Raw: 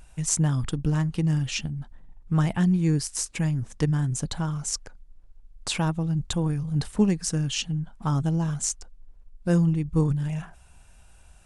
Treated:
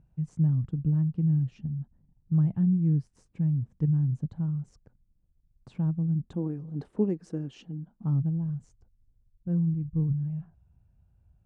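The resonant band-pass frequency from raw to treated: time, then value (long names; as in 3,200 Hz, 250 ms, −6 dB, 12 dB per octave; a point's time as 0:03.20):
resonant band-pass, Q 1.6
0:05.95 140 Hz
0:06.53 350 Hz
0:07.74 350 Hz
0:08.33 110 Hz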